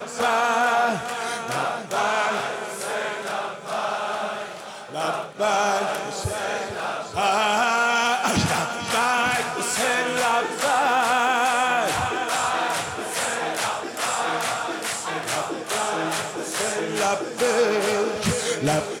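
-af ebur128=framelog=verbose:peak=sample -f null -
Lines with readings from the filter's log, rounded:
Integrated loudness:
  I:         -23.2 LUFS
  Threshold: -33.2 LUFS
Loudness range:
  LRA:         4.9 LU
  Threshold: -43.3 LUFS
  LRA low:   -26.1 LUFS
  LRA high:  -21.1 LUFS
Sample peak:
  Peak:       -9.9 dBFS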